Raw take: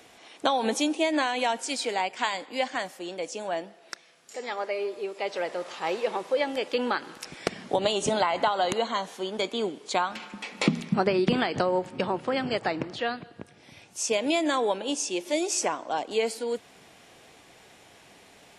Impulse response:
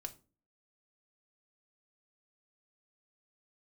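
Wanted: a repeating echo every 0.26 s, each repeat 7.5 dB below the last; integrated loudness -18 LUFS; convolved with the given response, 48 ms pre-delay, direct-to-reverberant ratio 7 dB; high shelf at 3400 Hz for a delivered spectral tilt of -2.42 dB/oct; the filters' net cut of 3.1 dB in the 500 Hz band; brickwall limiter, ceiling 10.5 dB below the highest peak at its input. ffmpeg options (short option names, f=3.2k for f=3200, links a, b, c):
-filter_complex "[0:a]equalizer=f=500:t=o:g=-4,highshelf=f=3.4k:g=5.5,alimiter=limit=-16dB:level=0:latency=1,aecho=1:1:260|520|780|1040|1300:0.422|0.177|0.0744|0.0312|0.0131,asplit=2[a][b];[1:a]atrim=start_sample=2205,adelay=48[c];[b][c]afir=irnorm=-1:irlink=0,volume=-3.5dB[d];[a][d]amix=inputs=2:normalize=0,volume=10dB"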